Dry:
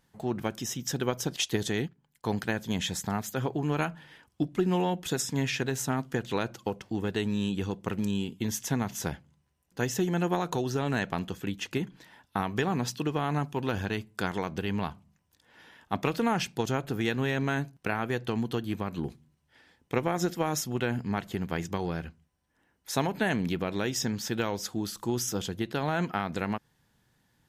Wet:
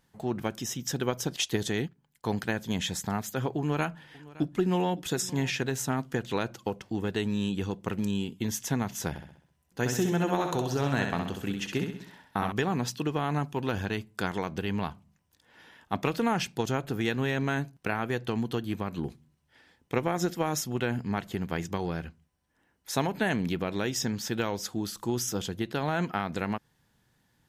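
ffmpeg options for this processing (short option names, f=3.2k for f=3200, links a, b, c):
-filter_complex "[0:a]asettb=1/sr,asplit=3[a][b][c];[a]atrim=end=3.584[d];[b]atrim=start=3.58:end=5.62,asetpts=PTS-STARTPTS,afade=t=in:d=0.004:c=qsin,afade=t=out:st=2.036:d=0.004:c=qsin,aecho=1:1:564:0.1,atrim=end_sample=89964[e];[c]atrim=start=5.616[f];[d][e]acrossfade=d=0.004:c1=hsin:c2=qsin[g];[g][f]acrossfade=d=0.004:c1=qsin:c2=hsin,asettb=1/sr,asplit=3[h][i][j];[h]atrim=end=9.094[k];[i]atrim=start=9.09:end=12.52,asetpts=PTS-STARTPTS,afade=t=in:d=0.004:c=qsin,afade=t=out:st=3.426:d=0.004:c=qsin,aecho=1:1:65|130|195|260|325|390:0.531|0.255|0.122|0.0587|0.0282|0.0135,atrim=end_sample=151263[l];[j]atrim=start=12.516[m];[k][l]acrossfade=d=0.004:c1=hsin:c2=qsin[n];[n][m]acrossfade=d=0.004:c1=qsin:c2=hsin"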